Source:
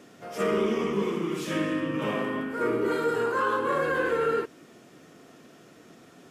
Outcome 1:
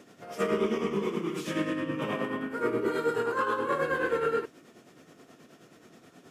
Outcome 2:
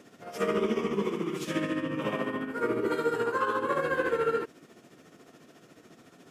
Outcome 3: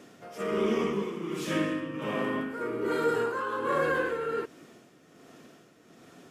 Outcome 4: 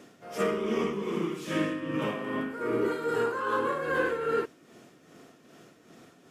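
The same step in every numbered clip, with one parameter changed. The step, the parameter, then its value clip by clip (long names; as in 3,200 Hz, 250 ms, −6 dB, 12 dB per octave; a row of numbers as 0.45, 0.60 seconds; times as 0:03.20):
amplitude tremolo, speed: 9.4, 14, 1.3, 2.5 Hertz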